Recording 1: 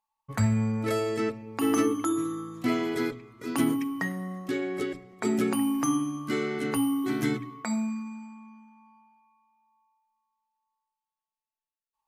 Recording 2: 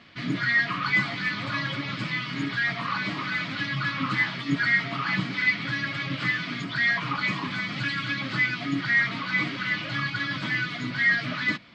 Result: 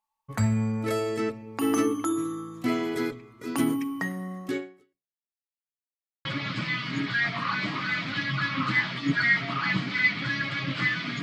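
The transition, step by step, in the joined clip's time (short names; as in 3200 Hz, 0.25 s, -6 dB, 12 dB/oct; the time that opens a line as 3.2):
recording 1
4.57–5.35 fade out exponential
5.35–6.25 mute
6.25 switch to recording 2 from 1.68 s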